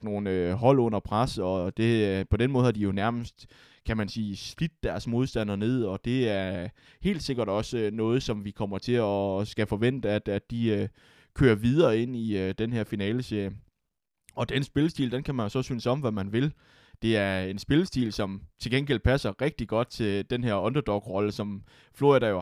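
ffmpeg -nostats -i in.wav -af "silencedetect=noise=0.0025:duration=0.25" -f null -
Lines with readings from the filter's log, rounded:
silence_start: 13.68
silence_end: 14.29 | silence_duration: 0.61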